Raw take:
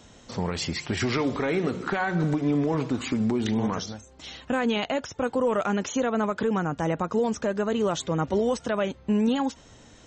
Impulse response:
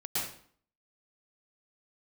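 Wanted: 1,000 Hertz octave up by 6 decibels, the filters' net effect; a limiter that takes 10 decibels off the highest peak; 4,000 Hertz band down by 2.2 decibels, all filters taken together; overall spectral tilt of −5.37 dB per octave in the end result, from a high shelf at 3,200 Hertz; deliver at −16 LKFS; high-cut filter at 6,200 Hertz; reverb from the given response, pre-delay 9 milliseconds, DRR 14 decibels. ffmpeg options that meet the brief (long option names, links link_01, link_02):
-filter_complex "[0:a]lowpass=6200,equalizer=frequency=1000:width_type=o:gain=7.5,highshelf=frequency=3200:gain=6.5,equalizer=frequency=4000:width_type=o:gain=-8,alimiter=limit=-21dB:level=0:latency=1,asplit=2[link_01][link_02];[1:a]atrim=start_sample=2205,adelay=9[link_03];[link_02][link_03]afir=irnorm=-1:irlink=0,volume=-19.5dB[link_04];[link_01][link_04]amix=inputs=2:normalize=0,volume=14dB"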